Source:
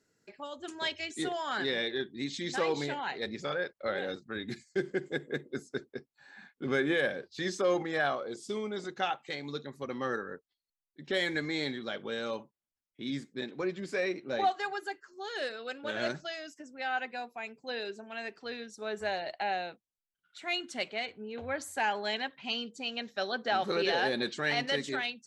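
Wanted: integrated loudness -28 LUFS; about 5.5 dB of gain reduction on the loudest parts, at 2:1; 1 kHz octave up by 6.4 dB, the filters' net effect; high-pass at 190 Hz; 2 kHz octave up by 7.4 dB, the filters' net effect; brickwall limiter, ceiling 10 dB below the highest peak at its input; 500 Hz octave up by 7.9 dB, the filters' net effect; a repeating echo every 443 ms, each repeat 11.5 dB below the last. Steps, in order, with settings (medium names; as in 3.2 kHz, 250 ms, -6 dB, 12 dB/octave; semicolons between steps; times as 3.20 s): high-pass 190 Hz; peaking EQ 500 Hz +8.5 dB; peaking EQ 1 kHz +3.5 dB; peaking EQ 2 kHz +7.5 dB; compression 2:1, threshold -26 dBFS; peak limiter -23 dBFS; feedback delay 443 ms, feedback 27%, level -11.5 dB; trim +5.5 dB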